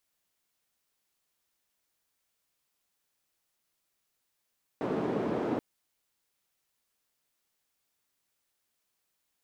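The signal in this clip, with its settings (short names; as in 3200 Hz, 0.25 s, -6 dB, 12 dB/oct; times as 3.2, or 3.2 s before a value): noise band 270–350 Hz, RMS -31 dBFS 0.78 s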